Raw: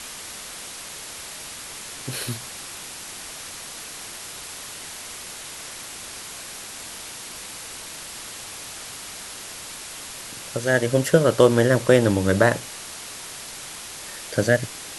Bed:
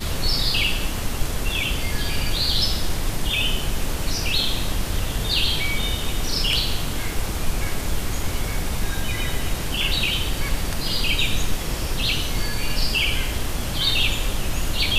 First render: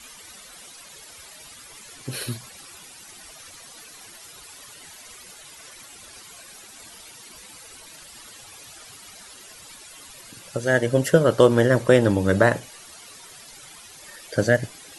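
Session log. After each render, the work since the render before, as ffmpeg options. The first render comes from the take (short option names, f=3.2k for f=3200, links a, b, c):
-af "afftdn=nr=13:nf=-37"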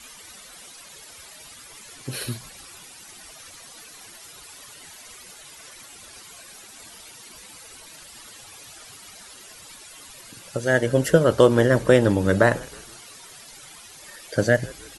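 -filter_complex "[0:a]asplit=4[a][b][c][d];[b]adelay=158,afreqshift=-81,volume=-23dB[e];[c]adelay=316,afreqshift=-162,volume=-29.2dB[f];[d]adelay=474,afreqshift=-243,volume=-35.4dB[g];[a][e][f][g]amix=inputs=4:normalize=0"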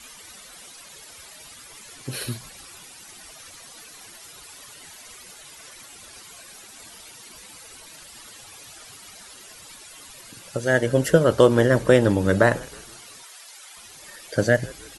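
-filter_complex "[0:a]asettb=1/sr,asplit=3[a][b][c];[a]atrim=end=13.234[d];[b]atrim=start=13.23:end=13.77,asetpts=PTS-STARTPTS,afade=t=in:d=0.004:c=qsin,afade=t=out:st=0.536:d=0.004:c=qsin,highpass=700[e];[c]atrim=start=13.766[f];[d][e]acrossfade=d=0.004:c1=hsin:c2=qsin[g];[g][f]acrossfade=d=0.004:c1=qsin:c2=hsin"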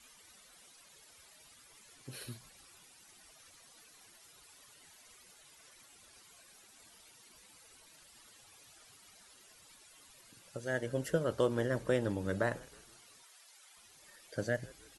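-af "volume=-15.5dB"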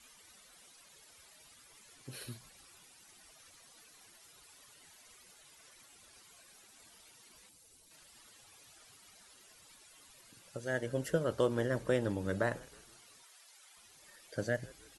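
-filter_complex "[0:a]asettb=1/sr,asplit=3[a][b][c];[a]atrim=end=7.494[d];[b]atrim=start=7.49:end=7.91,asetpts=PTS-STARTPTS,afade=t=in:d=0.004:c=qsin,afade=t=out:st=0.416:d=0.004:c=qsin,equalizer=f=1.5k:w=0.49:g=-11.5[e];[c]atrim=start=7.906[f];[d][e]acrossfade=d=0.004:c1=hsin:c2=qsin[g];[g][f]acrossfade=d=0.004:c1=qsin:c2=hsin"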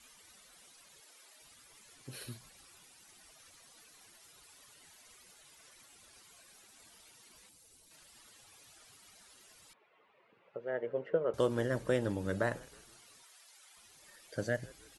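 -filter_complex "[0:a]asettb=1/sr,asplit=3[a][b][c];[a]atrim=end=1.004[d];[b]atrim=start=1:end=1.42,asetpts=PTS-STARTPTS,afade=t=in:d=0.004:c=qsin,afade=t=out:st=0.416:d=0.004:c=qsin,highpass=f=260:w=0.5412,highpass=f=260:w=1.3066[e];[c]atrim=start=1.416[f];[d][e]acrossfade=d=0.004:c1=hsin:c2=qsin[g];[g][f]acrossfade=d=0.004:c1=qsin:c2=hsin,asettb=1/sr,asplit=3[h][i][j];[h]atrim=end=9.734[k];[i]atrim=start=9.73:end=11.34,asetpts=PTS-STARTPTS,afade=t=in:d=0.004:c=qsin,afade=t=out:st=1.606:d=0.004:c=qsin,highpass=270,equalizer=f=280:t=q:w=4:g=-9,equalizer=f=440:t=q:w=4:g=6,equalizer=f=1.6k:t=q:w=4:g=-8,lowpass=f=2.2k:w=0.5412,lowpass=f=2.2k:w=1.3066[l];[j]atrim=start=11.336[m];[k][l]acrossfade=d=0.004:c1=hsin:c2=qsin[n];[n][m]acrossfade=d=0.004:c1=qsin:c2=hsin"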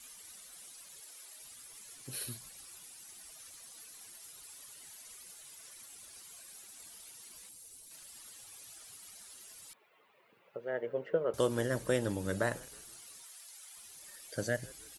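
-af "aemphasis=mode=production:type=50kf"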